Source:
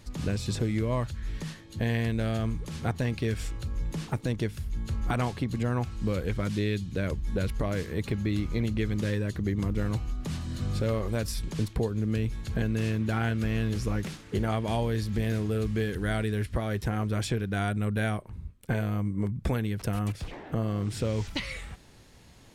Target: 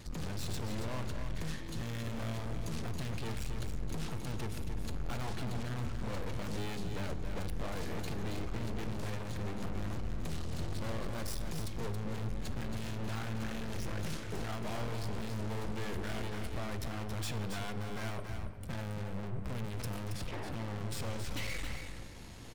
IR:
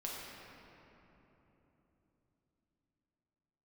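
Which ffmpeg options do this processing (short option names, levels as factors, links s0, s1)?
-filter_complex "[0:a]aeval=exprs='(tanh(158*val(0)+0.6)-tanh(0.6))/158':c=same,aecho=1:1:275:0.447,asplit=2[s0][s1];[1:a]atrim=start_sample=2205[s2];[s1][s2]afir=irnorm=-1:irlink=0,volume=0.355[s3];[s0][s3]amix=inputs=2:normalize=0,volume=1.58"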